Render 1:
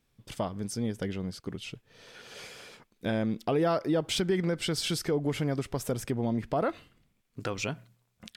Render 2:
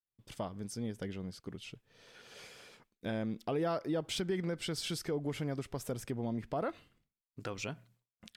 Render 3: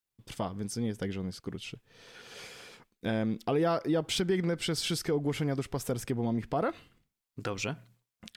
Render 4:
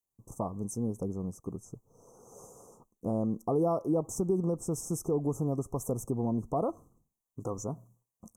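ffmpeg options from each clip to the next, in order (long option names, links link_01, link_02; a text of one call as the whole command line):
ffmpeg -i in.wav -af "agate=range=-33dB:threshold=-58dB:ratio=3:detection=peak,volume=-7dB" out.wav
ffmpeg -i in.wav -af "bandreject=frequency=600:width=12,volume=6dB" out.wav
ffmpeg -i in.wav -af "asuperstop=centerf=2700:order=20:qfactor=0.57" out.wav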